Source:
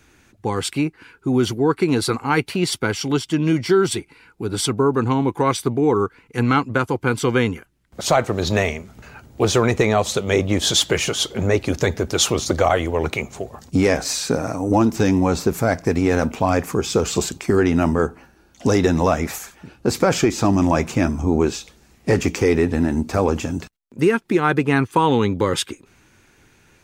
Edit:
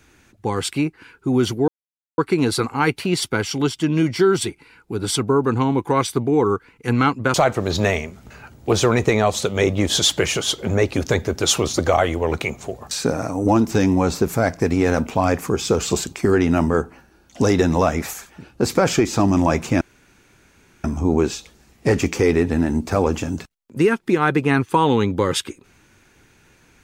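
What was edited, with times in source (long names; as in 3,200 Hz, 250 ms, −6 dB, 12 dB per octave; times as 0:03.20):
0:01.68: splice in silence 0.50 s
0:06.84–0:08.06: remove
0:13.63–0:14.16: remove
0:21.06: splice in room tone 1.03 s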